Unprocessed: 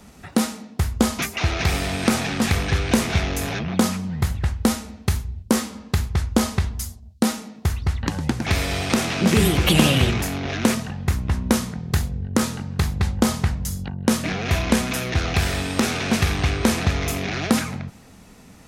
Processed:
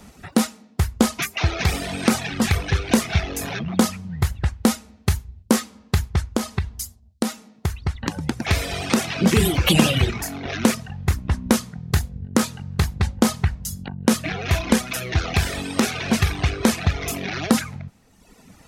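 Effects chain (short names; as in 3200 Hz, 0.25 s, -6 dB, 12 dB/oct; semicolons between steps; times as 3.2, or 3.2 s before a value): reverb removal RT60 1.2 s; 6.33–8.38 compressor, threshold -20 dBFS, peak gain reduction 8 dB; gain +1.5 dB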